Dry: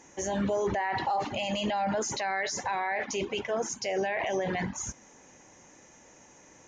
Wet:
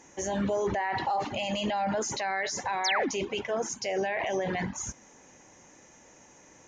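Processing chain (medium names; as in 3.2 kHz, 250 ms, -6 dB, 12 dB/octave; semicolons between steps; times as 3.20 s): painted sound fall, 2.84–3.09 s, 210–7000 Hz -28 dBFS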